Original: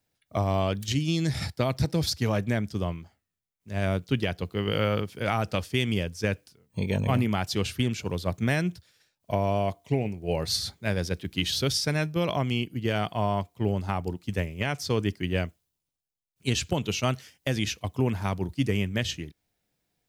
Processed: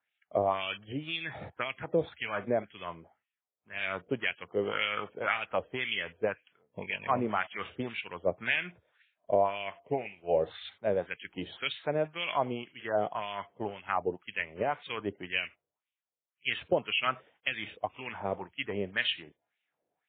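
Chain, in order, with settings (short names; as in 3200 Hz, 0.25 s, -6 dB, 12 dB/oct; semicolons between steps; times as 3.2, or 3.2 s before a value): wah 1.9 Hz 490–2700 Hz, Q 2.7; gain +7 dB; MP3 16 kbps 8000 Hz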